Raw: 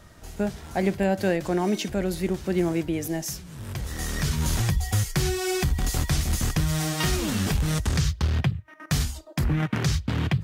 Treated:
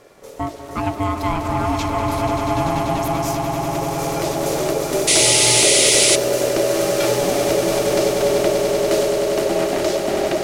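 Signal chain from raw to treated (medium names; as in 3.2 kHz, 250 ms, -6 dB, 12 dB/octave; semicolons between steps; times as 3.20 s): ring modulator 490 Hz; echo with a slow build-up 97 ms, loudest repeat 8, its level -9 dB; painted sound noise, 5.07–6.16 s, 1.9–11 kHz -19 dBFS; trim +4 dB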